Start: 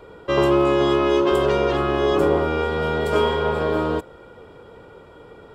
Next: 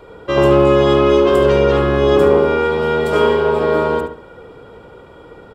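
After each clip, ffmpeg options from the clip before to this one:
ffmpeg -i in.wav -filter_complex "[0:a]asplit=2[link_01][link_02];[link_02]adelay=72,lowpass=frequency=2800:poles=1,volume=-3dB,asplit=2[link_03][link_04];[link_04]adelay=72,lowpass=frequency=2800:poles=1,volume=0.36,asplit=2[link_05][link_06];[link_06]adelay=72,lowpass=frequency=2800:poles=1,volume=0.36,asplit=2[link_07][link_08];[link_08]adelay=72,lowpass=frequency=2800:poles=1,volume=0.36,asplit=2[link_09][link_10];[link_10]adelay=72,lowpass=frequency=2800:poles=1,volume=0.36[link_11];[link_01][link_03][link_05][link_07][link_09][link_11]amix=inputs=6:normalize=0,volume=3dB" out.wav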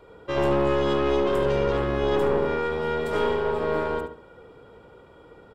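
ffmpeg -i in.wav -af "aeval=exprs='(tanh(2.51*val(0)+0.55)-tanh(0.55))/2.51':channel_layout=same,volume=-7.5dB" out.wav

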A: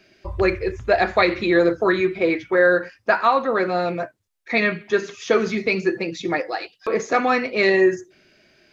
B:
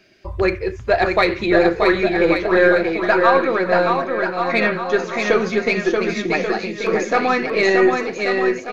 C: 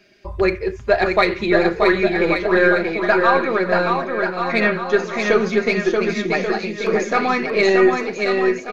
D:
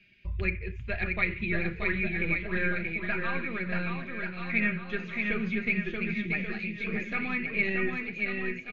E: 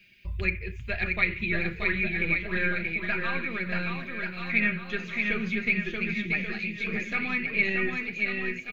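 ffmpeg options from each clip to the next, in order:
ffmpeg -i in.wav -af "aeval=exprs='0.75*(cos(1*acos(clip(val(0)/0.75,-1,1)))-cos(1*PI/2))+0.0188*(cos(6*acos(clip(val(0)/0.75,-1,1)))-cos(6*PI/2))':channel_layout=same,aecho=1:1:630|1134|1537|1860|2118:0.631|0.398|0.251|0.158|0.1,volume=1dB" out.wav
ffmpeg -i in.wav -af "aecho=1:1:4.9:0.38,volume=-1dB" out.wav
ffmpeg -i in.wav -filter_complex "[0:a]firequalizer=gain_entry='entry(130,0);entry(380,-19);entry(830,-24);entry(2400,2);entry(5300,-20)':delay=0.05:min_phase=1,acrossover=split=550|2500[link_01][link_02][link_03];[link_03]acompressor=threshold=-45dB:ratio=6[link_04];[link_01][link_02][link_04]amix=inputs=3:normalize=0,volume=-1.5dB" out.wav
ffmpeg -i in.wav -af "aemphasis=mode=production:type=75kf" out.wav

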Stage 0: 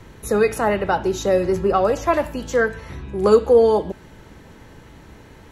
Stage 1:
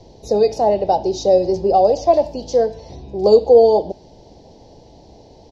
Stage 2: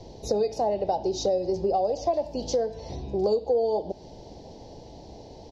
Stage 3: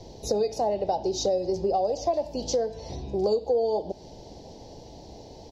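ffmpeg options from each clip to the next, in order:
ffmpeg -i in.wav -af "firequalizer=gain_entry='entry(180,0);entry(730,12);entry(1300,-23);entry(2000,-13);entry(4900,13);entry(9000,-19)':delay=0.05:min_phase=1,volume=-3dB" out.wav
ffmpeg -i in.wav -af "acompressor=threshold=-24dB:ratio=4" out.wav
ffmpeg -i in.wav -af "crystalizer=i=1:c=0" -ar 44100 -c:a libmp3lame -b:a 80k out.mp3

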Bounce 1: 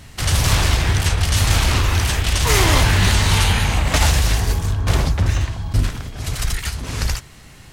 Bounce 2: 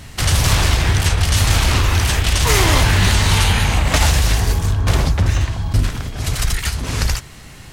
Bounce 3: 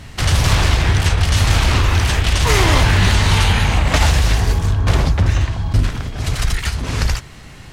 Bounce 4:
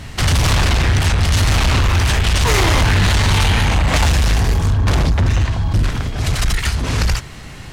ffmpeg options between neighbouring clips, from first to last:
ffmpeg -i in.wav -af "acompressor=threshold=-20dB:ratio=1.5,volume=4.5dB" out.wav
ffmpeg -i in.wav -af "highshelf=frequency=7600:gain=-10.5,volume=1dB" out.wav
ffmpeg -i in.wav -af "asoftclip=type=tanh:threshold=-13.5dB,volume=4dB" out.wav

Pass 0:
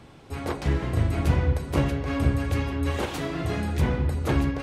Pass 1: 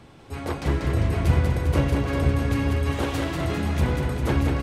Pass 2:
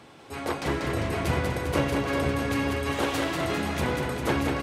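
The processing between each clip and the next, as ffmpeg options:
ffmpeg -i in.wav -af "aecho=1:1:190|399|628.9|881.8|1160:0.631|0.398|0.251|0.158|0.1" out.wav
ffmpeg -i in.wav -af "highpass=frequency=350:poles=1,volume=2.5dB" out.wav

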